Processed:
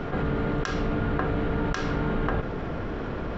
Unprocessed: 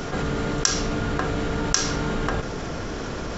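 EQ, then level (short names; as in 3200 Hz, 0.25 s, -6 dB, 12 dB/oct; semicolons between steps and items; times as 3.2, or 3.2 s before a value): air absorption 490 m; high shelf 5000 Hz +6 dB; 0.0 dB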